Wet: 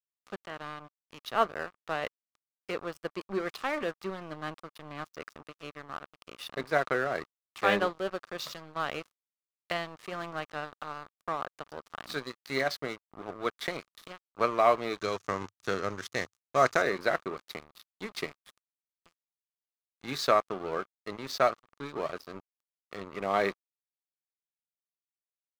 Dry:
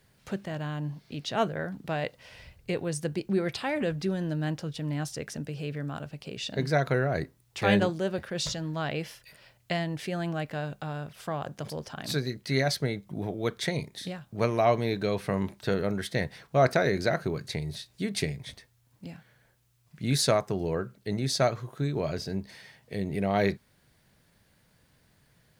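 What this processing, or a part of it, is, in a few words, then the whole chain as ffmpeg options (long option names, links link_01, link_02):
pocket radio on a weak battery: -filter_complex "[0:a]highpass=330,lowpass=4500,aeval=exprs='sgn(val(0))*max(abs(val(0))-0.01,0)':channel_layout=same,equalizer=frequency=1200:width_type=o:width=0.36:gain=10.5,asettb=1/sr,asplit=3[link_01][link_02][link_03];[link_01]atrim=end=14.984[link_04];[link_02]atrim=start=14.98:end=16.82,asetpts=PTS-STARTPTS,afade=type=in:duration=0.004:curve=qsin,afade=type=out:start_time=1.836:duration=0.004:curve=qsin,equalizer=frequency=100:width_type=o:width=0.67:gain=8,equalizer=frequency=630:width_type=o:width=0.67:gain=-3,equalizer=frequency=6300:width_type=o:width=0.67:gain=11[link_05];[link_03]atrim=start=16.816[link_06];[link_04][link_05]acrossfade=duration=0.004:curve1=hsin:curve2=qsin[link_07];[link_07][link_06]acrossfade=duration=0.004:curve1=qsin:curve2=hsin"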